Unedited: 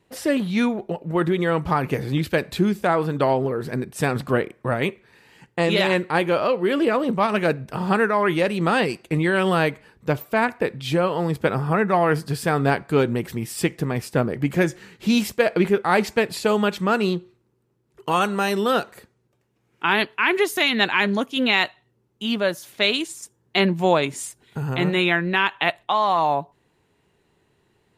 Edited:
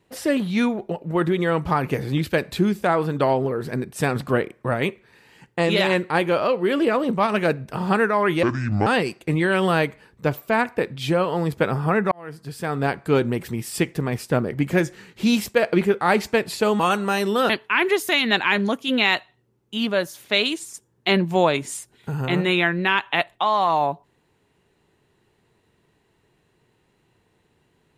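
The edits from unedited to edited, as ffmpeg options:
-filter_complex "[0:a]asplit=6[a][b][c][d][e][f];[a]atrim=end=8.434[g];[b]atrim=start=8.43:end=8.7,asetpts=PTS-STARTPTS,asetrate=27342,aresample=44100[h];[c]atrim=start=8.696:end=11.95,asetpts=PTS-STARTPTS,afade=t=out:st=3.25:d=0.004:c=hsin[i];[d]atrim=start=11.95:end=16.632,asetpts=PTS-STARTPTS,afade=t=in:d=1.03[j];[e]atrim=start=18.098:end=18.802[k];[f]atrim=start=19.978[l];[g][h]acrossfade=d=0.004:c1=hsin:c2=hsin[m];[i][j]concat=n=2:v=0:a=1[n];[m][n]acrossfade=d=0.004:c1=hsin:c2=hsin[o];[o][k]acrossfade=d=0.004:c1=hsin:c2=hsin[p];[p][l]acrossfade=d=0.004:c1=hsin:c2=hsin"

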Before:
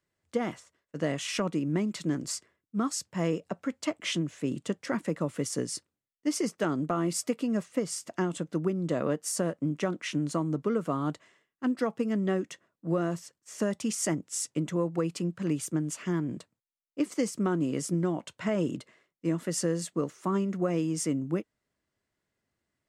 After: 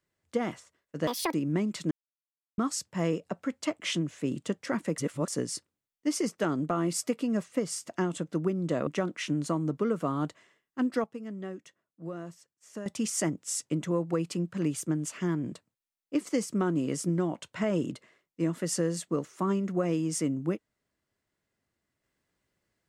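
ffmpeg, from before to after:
-filter_complex "[0:a]asplit=10[a][b][c][d][e][f][g][h][i][j];[a]atrim=end=1.074[k];[b]atrim=start=1.07:end=1.54,asetpts=PTS-STARTPTS,asetrate=76734,aresample=44100,atrim=end_sample=11912,asetpts=PTS-STARTPTS[l];[c]atrim=start=1.536:end=2.11,asetpts=PTS-STARTPTS,afade=t=out:st=0.57:d=0.004:c=hsin[m];[d]atrim=start=2.11:end=2.78,asetpts=PTS-STARTPTS,volume=0[n];[e]atrim=start=2.78:end=5.182,asetpts=PTS-STARTPTS,afade=t=in:d=0.004:c=hsin[o];[f]atrim=start=5.178:end=5.482,asetpts=PTS-STARTPTS,areverse[p];[g]atrim=start=5.478:end=9.072[q];[h]atrim=start=9.718:end=11.892[r];[i]atrim=start=11.888:end=13.712,asetpts=PTS-STARTPTS,volume=-10.5dB[s];[j]atrim=start=13.708[t];[k][l]acrossfade=d=0.004:c1=hsin:c2=hsin[u];[m][n][o]concat=n=3:v=0:a=1[v];[u][v]acrossfade=d=0.004:c1=hsin:c2=hsin[w];[w][p]acrossfade=d=0.004:c1=hsin:c2=hsin[x];[x][q]acrossfade=d=0.004:c1=hsin:c2=hsin[y];[y][r]acrossfade=d=0.004:c1=hsin:c2=hsin[z];[z][s]acrossfade=d=0.004:c1=hsin:c2=hsin[aa];[aa][t]acrossfade=d=0.004:c1=hsin:c2=hsin"

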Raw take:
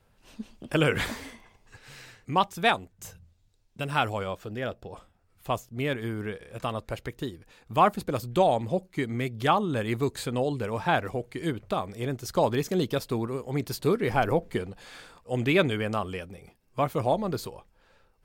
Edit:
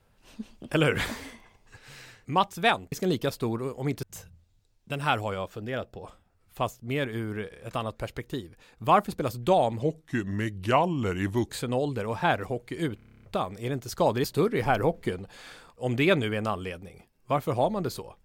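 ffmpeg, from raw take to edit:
-filter_complex "[0:a]asplit=15[a][b][c][d][e][f][g][h][i][j][k][l][m][n][o];[a]atrim=end=2.922[p];[b]atrim=start=12.608:end=13.722[q];[c]atrim=start=2.918:end=8.714[r];[d]atrim=start=8.71:end=10.13,asetpts=PTS-STARTPTS,asetrate=37485,aresample=44100[s];[e]atrim=start=10.126:end=11.632[t];[f]atrim=start=11.598:end=11.632[u];[g]atrim=start=11.598:end=11.632[v];[h]atrim=start=11.598:end=11.632[w];[i]atrim=start=11.598:end=11.632[x];[j]atrim=start=11.598:end=11.632[y];[k]atrim=start=11.598:end=11.632[z];[l]atrim=start=11.598:end=11.632[aa];[m]atrim=start=11.598:end=11.632[ab];[n]atrim=start=11.598:end=12.612[ac];[o]atrim=start=13.718[ad];[p][q]acrossfade=d=0.004:c1=hsin:c2=hsin[ae];[ae][r]acrossfade=d=0.004:c1=hsin:c2=hsin[af];[af][s]acrossfade=d=0.004:c1=hsin:c2=hsin[ag];[ag][t]acrossfade=d=0.004:c1=hsin:c2=hsin[ah];[ah][u]acrossfade=d=0.004:c1=hsin:c2=hsin[ai];[ai][v]acrossfade=d=0.004:c1=hsin:c2=hsin[aj];[aj][w]acrossfade=d=0.004:c1=hsin:c2=hsin[ak];[ak][x]acrossfade=d=0.004:c1=hsin:c2=hsin[al];[al][y]acrossfade=d=0.004:c1=hsin:c2=hsin[am];[am][z]acrossfade=d=0.004:c1=hsin:c2=hsin[an];[an][aa]acrossfade=d=0.004:c1=hsin:c2=hsin[ao];[ao][ab]acrossfade=d=0.004:c1=hsin:c2=hsin[ap];[ap][ac]acrossfade=d=0.004:c1=hsin:c2=hsin[aq];[aq][ad]acrossfade=d=0.004:c1=hsin:c2=hsin"

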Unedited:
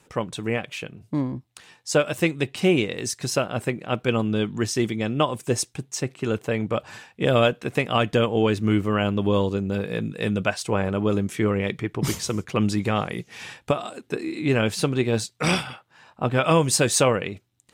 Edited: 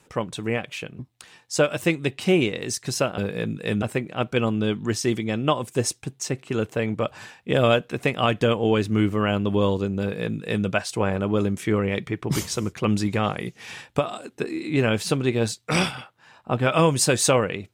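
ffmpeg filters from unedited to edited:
-filter_complex "[0:a]asplit=4[a][b][c][d];[a]atrim=end=0.992[e];[b]atrim=start=1.348:end=3.542[f];[c]atrim=start=9.728:end=10.372[g];[d]atrim=start=3.538[h];[e][f]acrossfade=d=0.004:c1=hsin:c2=hsin[i];[i][g]acrossfade=d=0.004:c1=hsin:c2=hsin[j];[j][h]acrossfade=d=0.004:c1=hsin:c2=hsin"

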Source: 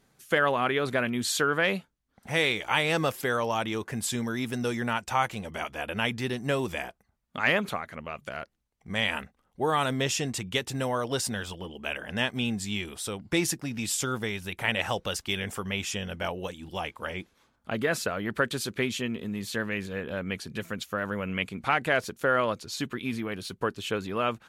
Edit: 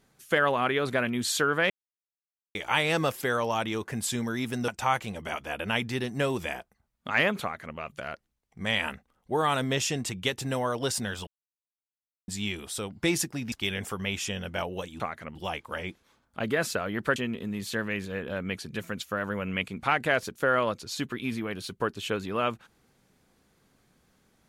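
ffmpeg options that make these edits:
-filter_complex "[0:a]asplit=10[a][b][c][d][e][f][g][h][i][j];[a]atrim=end=1.7,asetpts=PTS-STARTPTS,afade=t=out:st=1.696:d=0.004:c=hsin[k];[b]atrim=start=1.7:end=2.55,asetpts=PTS-STARTPTS,volume=0[l];[c]atrim=start=2.55:end=4.682,asetpts=PTS-STARTPTS,afade=t=in:d=0.004:c=hsin[m];[d]atrim=start=4.968:end=11.56,asetpts=PTS-STARTPTS,afade=t=out:st=6.588:d=0.004:c=hsin[n];[e]atrim=start=11.56:end=12.57,asetpts=PTS-STARTPTS,volume=0[o];[f]atrim=start=12.57:end=13.812,asetpts=PTS-STARTPTS,afade=t=in:d=0.004:c=hsin[p];[g]atrim=start=15.178:end=16.662[q];[h]atrim=start=7.708:end=8.062[r];[i]atrim=start=16.658:end=18.472[s];[j]atrim=start=18.968[t];[k][l][m]concat=n=3:v=0:a=1[u];[n][o][p]concat=n=3:v=0:a=1[v];[u][v]acrossfade=d=0.004:c1=hsin:c2=hsin[w];[w][q]acrossfade=d=0.004:c1=hsin:c2=hsin[x];[x][r]acrossfade=d=0.004:c1=hsin:c2=hsin[y];[y][s]acrossfade=d=0.004:c1=hsin:c2=hsin[z];[z][t]acrossfade=d=0.004:c1=hsin:c2=hsin"

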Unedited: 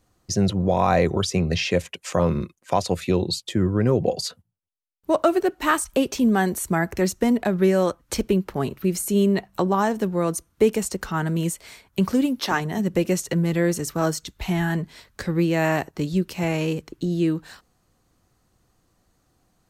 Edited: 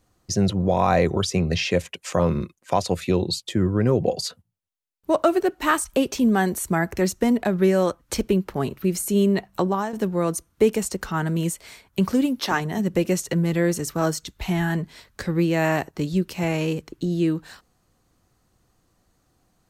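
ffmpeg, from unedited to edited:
-filter_complex "[0:a]asplit=2[a][b];[a]atrim=end=9.93,asetpts=PTS-STARTPTS,afade=t=out:st=9.64:d=0.29:silence=0.298538[c];[b]atrim=start=9.93,asetpts=PTS-STARTPTS,afade=t=in:d=0.004:c=hsin:silence=0.298538[d];[c][d]concat=n=2:v=0:a=1"

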